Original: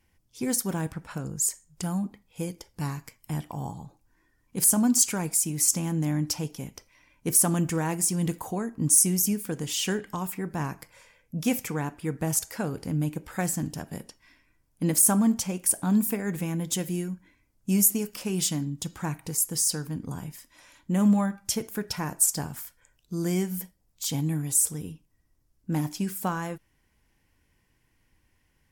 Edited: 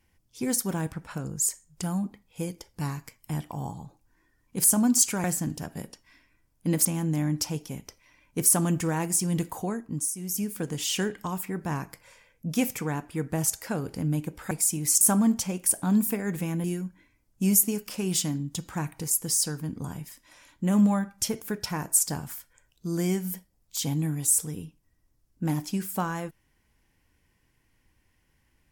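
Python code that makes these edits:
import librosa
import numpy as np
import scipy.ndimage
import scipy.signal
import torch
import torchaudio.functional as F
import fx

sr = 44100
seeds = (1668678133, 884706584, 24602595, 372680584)

y = fx.edit(x, sr, fx.swap(start_s=5.24, length_s=0.5, other_s=13.4, other_length_s=1.61),
    fx.fade_down_up(start_s=8.59, length_s=0.89, db=-14.0, fade_s=0.42),
    fx.cut(start_s=16.64, length_s=0.27), tone=tone)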